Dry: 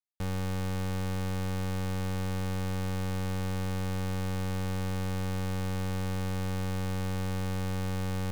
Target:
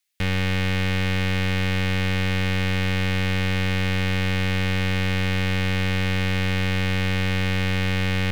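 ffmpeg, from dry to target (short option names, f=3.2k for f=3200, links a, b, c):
-filter_complex "[0:a]highshelf=f=1.5k:t=q:w=1.5:g=10.5,acrossover=split=3700[a][b];[b]acompressor=threshold=-49dB:ratio=4:attack=1:release=60[c];[a][c]amix=inputs=2:normalize=0,volume=8.5dB"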